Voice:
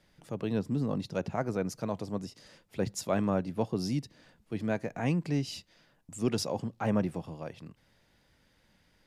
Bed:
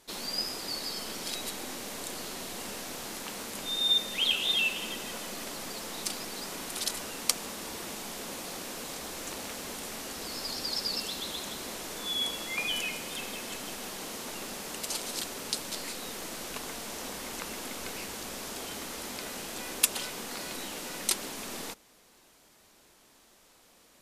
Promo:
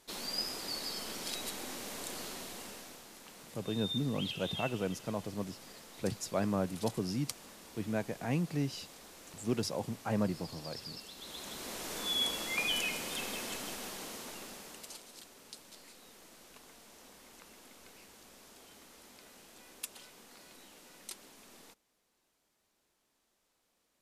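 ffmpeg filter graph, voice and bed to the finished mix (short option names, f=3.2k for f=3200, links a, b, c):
-filter_complex "[0:a]adelay=3250,volume=-3.5dB[a];[1:a]volume=9.5dB,afade=t=out:st=2.23:d=0.82:silence=0.298538,afade=t=in:st=11.15:d=0.81:silence=0.223872,afade=t=out:st=13.4:d=1.66:silence=0.149624[b];[a][b]amix=inputs=2:normalize=0"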